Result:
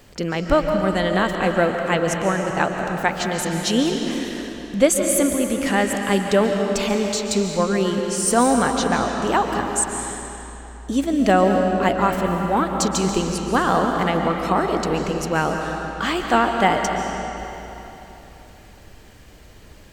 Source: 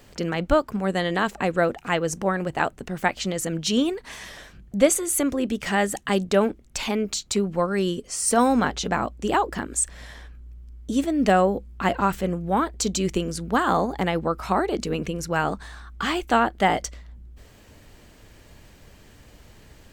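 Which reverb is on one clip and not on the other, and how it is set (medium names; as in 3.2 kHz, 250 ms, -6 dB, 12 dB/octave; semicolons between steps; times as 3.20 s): algorithmic reverb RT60 3.4 s, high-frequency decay 0.85×, pre-delay 100 ms, DRR 3 dB; trim +2 dB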